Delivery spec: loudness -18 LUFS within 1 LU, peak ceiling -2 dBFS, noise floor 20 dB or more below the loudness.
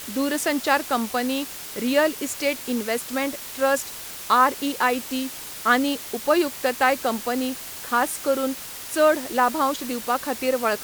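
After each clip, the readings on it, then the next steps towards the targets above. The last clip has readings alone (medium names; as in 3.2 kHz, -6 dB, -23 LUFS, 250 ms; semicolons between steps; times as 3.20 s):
noise floor -37 dBFS; noise floor target -44 dBFS; loudness -23.5 LUFS; peak level -5.5 dBFS; loudness target -18.0 LUFS
-> noise reduction 7 dB, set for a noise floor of -37 dBFS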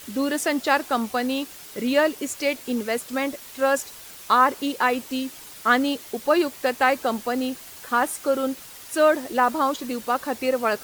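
noise floor -42 dBFS; noise floor target -44 dBFS
-> noise reduction 6 dB, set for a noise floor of -42 dBFS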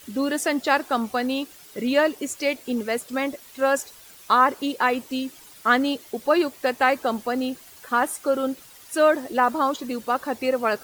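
noise floor -47 dBFS; loudness -23.5 LUFS; peak level -5.5 dBFS; loudness target -18.0 LUFS
-> trim +5.5 dB; peak limiter -2 dBFS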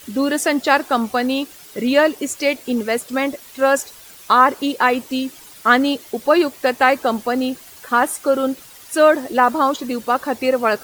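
loudness -18.5 LUFS; peak level -2.0 dBFS; noise floor -42 dBFS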